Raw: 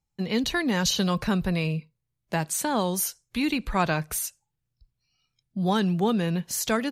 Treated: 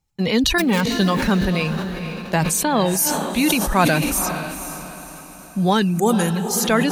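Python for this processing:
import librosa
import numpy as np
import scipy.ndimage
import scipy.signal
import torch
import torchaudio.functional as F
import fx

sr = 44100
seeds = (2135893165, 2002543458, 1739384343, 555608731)

p1 = fx.dead_time(x, sr, dead_ms=0.19, at=(0.58, 0.98))
p2 = fx.dereverb_blind(p1, sr, rt60_s=1.6)
p3 = fx.high_shelf_res(p2, sr, hz=5500.0, db=13.0, q=3.0, at=(5.91, 6.36))
p4 = p3 + fx.echo_diffused(p3, sr, ms=480, feedback_pct=47, wet_db=-9, dry=0)
p5 = fx.sustainer(p4, sr, db_per_s=28.0)
y = p5 * 10.0 ** (7.0 / 20.0)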